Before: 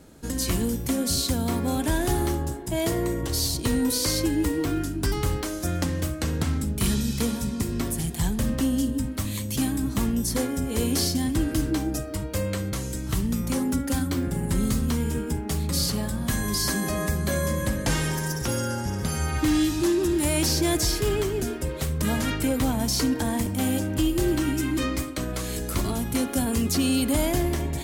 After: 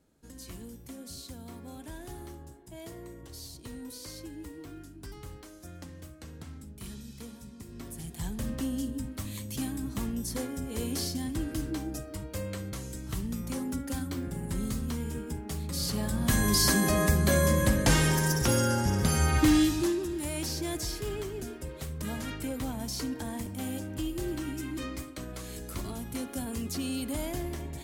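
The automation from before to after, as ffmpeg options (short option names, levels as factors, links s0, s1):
-af "volume=1.19,afade=t=in:st=7.64:d=0.84:silence=0.298538,afade=t=in:st=15.77:d=0.66:silence=0.316228,afade=t=out:st=19.38:d=0.68:silence=0.251189"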